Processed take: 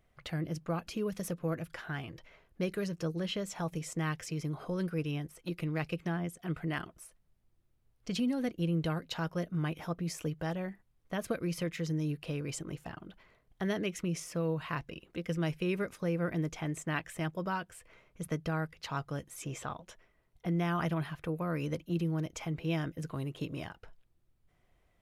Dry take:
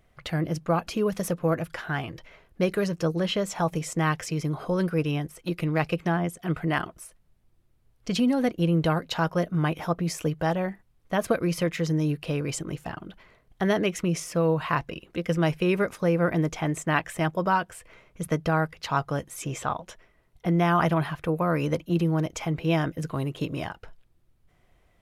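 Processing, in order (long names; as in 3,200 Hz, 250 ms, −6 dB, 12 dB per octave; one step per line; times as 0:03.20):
dynamic equaliser 840 Hz, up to −6 dB, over −37 dBFS, Q 0.87
level −7.5 dB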